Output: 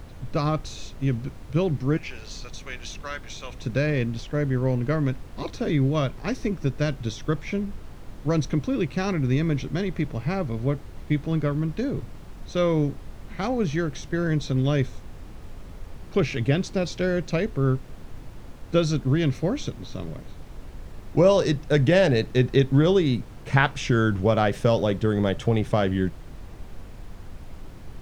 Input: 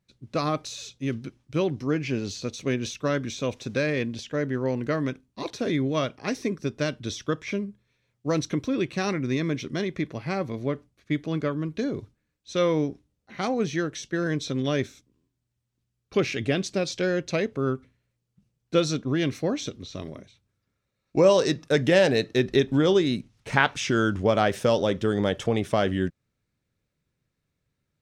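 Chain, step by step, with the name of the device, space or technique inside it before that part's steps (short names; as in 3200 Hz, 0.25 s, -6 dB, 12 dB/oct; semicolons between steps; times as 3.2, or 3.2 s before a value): 1.97–3.54 HPF 1100 Hz 12 dB/oct; car interior (bell 130 Hz +9 dB 0.75 oct; high shelf 4800 Hz -6 dB; brown noise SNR 12 dB)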